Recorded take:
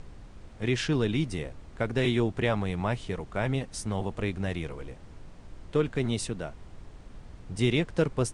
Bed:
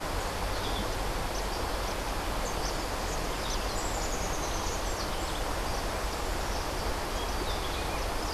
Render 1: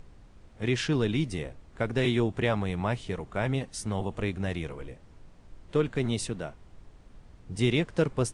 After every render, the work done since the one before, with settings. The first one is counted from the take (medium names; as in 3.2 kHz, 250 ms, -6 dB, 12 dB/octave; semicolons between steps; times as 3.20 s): noise print and reduce 6 dB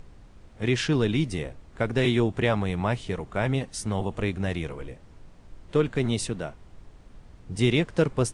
trim +3 dB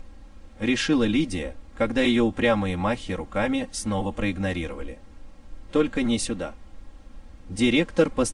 comb 3.7 ms, depth 99%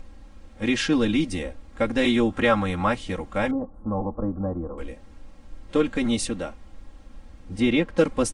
2.30–2.95 s: peaking EQ 1.3 kHz +7.5 dB 0.58 oct; 3.51–4.78 s: elliptic low-pass 1.2 kHz, stop band 50 dB; 7.56–7.98 s: peaking EQ 8.1 kHz -11 dB 1.8 oct